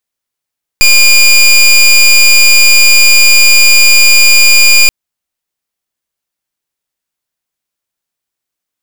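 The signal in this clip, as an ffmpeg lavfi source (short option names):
-f lavfi -i "aevalsrc='0.631*(2*lt(mod(2420*t,1),0.21)-1)':d=4.08:s=44100"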